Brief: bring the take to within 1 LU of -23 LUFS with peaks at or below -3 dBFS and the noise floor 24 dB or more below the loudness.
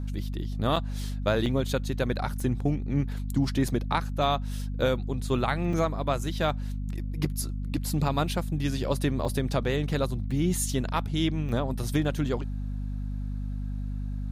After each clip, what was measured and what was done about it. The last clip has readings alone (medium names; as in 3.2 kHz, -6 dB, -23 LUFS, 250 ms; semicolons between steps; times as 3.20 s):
dropouts 8; longest dropout 3.3 ms; hum 50 Hz; highest harmonic 250 Hz; hum level -29 dBFS; loudness -29.0 LUFS; peak level -12.0 dBFS; loudness target -23.0 LUFS
-> interpolate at 0.76/1.46/2.40/3.68/5.73/9.25/10.31/11.49 s, 3.3 ms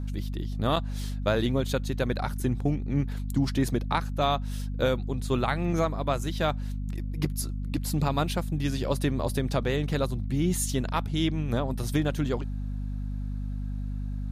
dropouts 0; hum 50 Hz; highest harmonic 250 Hz; hum level -29 dBFS
-> hum notches 50/100/150/200/250 Hz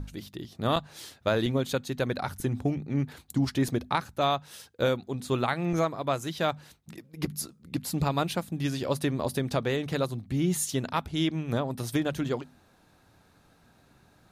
hum not found; loudness -29.5 LUFS; peak level -12.0 dBFS; loudness target -23.0 LUFS
-> trim +6.5 dB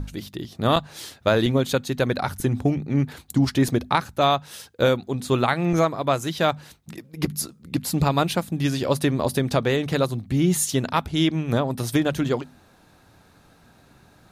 loudness -23.0 LUFS; peak level -5.5 dBFS; noise floor -55 dBFS